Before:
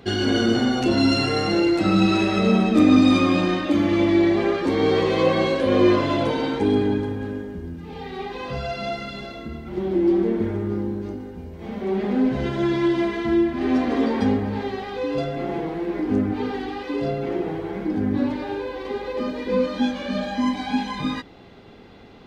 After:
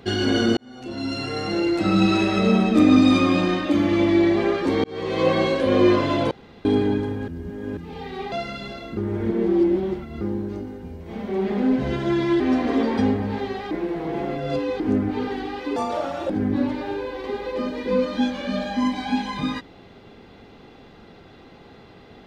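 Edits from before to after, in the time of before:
0:00.57–0:02.04: fade in
0:04.84–0:05.29: fade in
0:06.31–0:06.65: fill with room tone
0:07.28–0:07.77: reverse
0:08.32–0:08.85: remove
0:09.50–0:10.74: reverse
0:12.93–0:13.63: remove
0:14.94–0:16.03: reverse
0:16.99–0:17.91: play speed 171%

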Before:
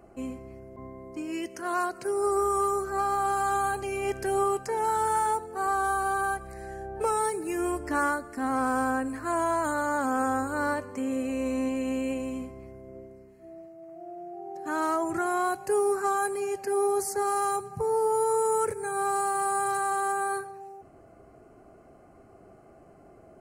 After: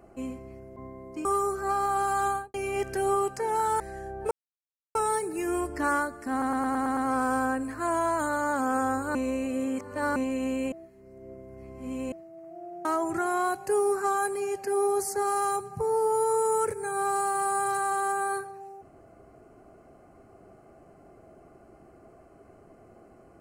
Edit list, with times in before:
0:01.25–0:02.54: remove
0:03.56–0:03.83: fade out and dull
0:05.09–0:06.55: remove
0:07.06: splice in silence 0.64 s
0:08.42: stutter 0.11 s, 7 plays
0:10.60–0:11.61: reverse
0:12.17–0:13.57: reverse
0:14.30–0:14.85: remove

